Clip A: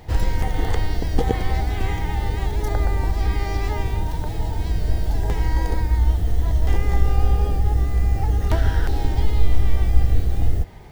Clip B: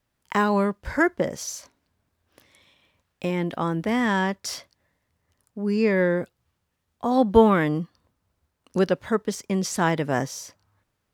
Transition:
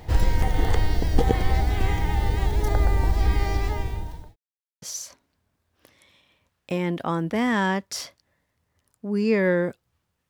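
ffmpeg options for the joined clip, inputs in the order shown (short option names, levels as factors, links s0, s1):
-filter_complex "[0:a]apad=whole_dur=10.29,atrim=end=10.29,asplit=2[s0][s1];[s0]atrim=end=4.36,asetpts=PTS-STARTPTS,afade=t=out:st=3.46:d=0.9[s2];[s1]atrim=start=4.36:end=4.82,asetpts=PTS-STARTPTS,volume=0[s3];[1:a]atrim=start=1.35:end=6.82,asetpts=PTS-STARTPTS,afade=t=in:d=0.004:c=hsin[s4];[s2][s3][s4]concat=n=3:v=0:a=1"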